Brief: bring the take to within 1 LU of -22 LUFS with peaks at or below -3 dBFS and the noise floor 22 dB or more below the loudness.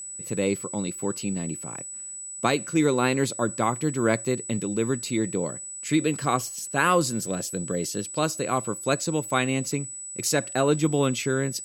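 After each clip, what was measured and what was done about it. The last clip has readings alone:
steady tone 7900 Hz; tone level -35 dBFS; loudness -26.0 LUFS; peak -8.0 dBFS; loudness target -22.0 LUFS
-> notch 7900 Hz, Q 30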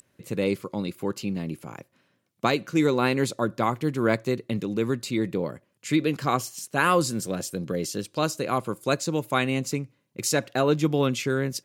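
steady tone none; loudness -26.5 LUFS; peak -8.0 dBFS; loudness target -22.0 LUFS
-> gain +4.5 dB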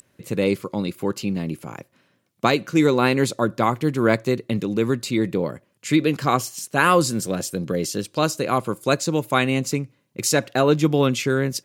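loudness -22.0 LUFS; peak -3.5 dBFS; noise floor -66 dBFS

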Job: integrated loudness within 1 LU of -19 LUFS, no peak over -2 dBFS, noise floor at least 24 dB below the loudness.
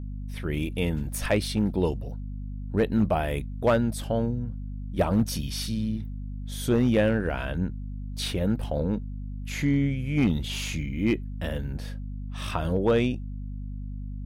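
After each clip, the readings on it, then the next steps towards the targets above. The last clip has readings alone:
clipped 0.3%; flat tops at -14.5 dBFS; hum 50 Hz; harmonics up to 250 Hz; hum level -32 dBFS; loudness -28.0 LUFS; peak -14.5 dBFS; loudness target -19.0 LUFS
-> clip repair -14.5 dBFS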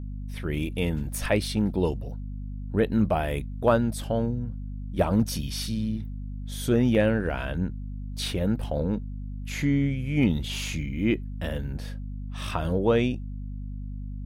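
clipped 0.0%; hum 50 Hz; harmonics up to 250 Hz; hum level -32 dBFS
-> notches 50/100/150/200/250 Hz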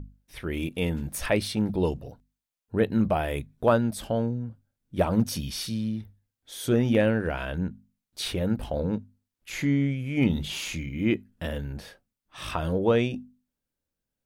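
hum none; loudness -27.5 LUFS; peak -8.5 dBFS; loudness target -19.0 LUFS
-> gain +8.5 dB; limiter -2 dBFS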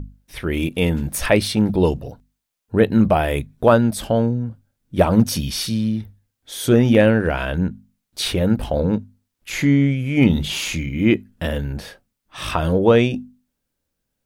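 loudness -19.5 LUFS; peak -2.0 dBFS; noise floor -78 dBFS

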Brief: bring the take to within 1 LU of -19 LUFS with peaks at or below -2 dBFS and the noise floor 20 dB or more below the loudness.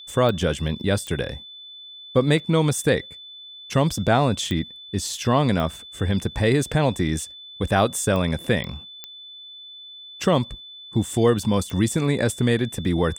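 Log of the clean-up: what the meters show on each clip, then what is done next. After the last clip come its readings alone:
clicks 8; steady tone 3500 Hz; tone level -39 dBFS; loudness -22.5 LUFS; peak -6.0 dBFS; loudness target -19.0 LUFS
-> de-click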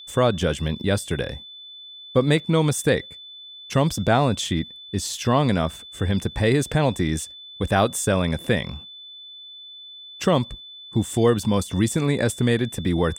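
clicks 0; steady tone 3500 Hz; tone level -39 dBFS
-> notch 3500 Hz, Q 30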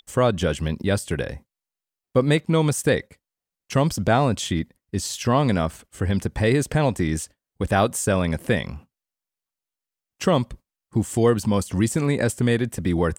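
steady tone none; loudness -23.0 LUFS; peak -6.5 dBFS; loudness target -19.0 LUFS
-> gain +4 dB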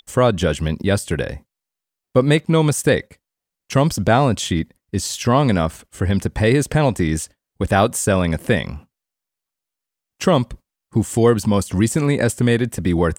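loudness -19.0 LUFS; peak -2.5 dBFS; noise floor -85 dBFS

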